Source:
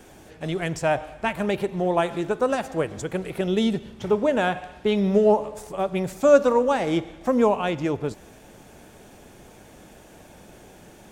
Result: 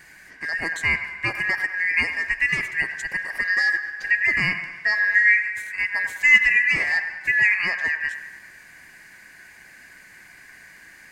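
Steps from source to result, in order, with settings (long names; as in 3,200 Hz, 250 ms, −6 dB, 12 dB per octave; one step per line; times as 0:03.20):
band-splitting scrambler in four parts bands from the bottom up 2143
delay with a band-pass on its return 100 ms, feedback 57%, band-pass 1,300 Hz, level −9.5 dB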